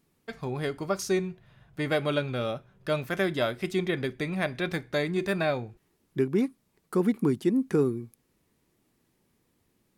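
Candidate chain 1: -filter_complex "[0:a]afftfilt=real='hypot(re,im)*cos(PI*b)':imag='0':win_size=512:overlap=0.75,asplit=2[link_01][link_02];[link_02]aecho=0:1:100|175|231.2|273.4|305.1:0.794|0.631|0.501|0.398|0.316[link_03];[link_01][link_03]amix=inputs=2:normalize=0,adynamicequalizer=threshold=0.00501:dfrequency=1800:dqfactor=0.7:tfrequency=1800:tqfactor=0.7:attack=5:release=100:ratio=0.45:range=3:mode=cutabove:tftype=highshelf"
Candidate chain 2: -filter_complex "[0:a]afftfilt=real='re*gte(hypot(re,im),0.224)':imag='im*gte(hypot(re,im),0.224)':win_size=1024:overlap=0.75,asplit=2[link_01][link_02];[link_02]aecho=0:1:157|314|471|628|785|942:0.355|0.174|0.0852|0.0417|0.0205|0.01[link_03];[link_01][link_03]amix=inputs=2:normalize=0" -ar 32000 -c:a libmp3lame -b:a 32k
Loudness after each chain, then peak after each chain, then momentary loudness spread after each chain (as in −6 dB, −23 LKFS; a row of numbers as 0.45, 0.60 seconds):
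−30.5, −31.0 LKFS; −15.5, −13.5 dBFS; 11, 14 LU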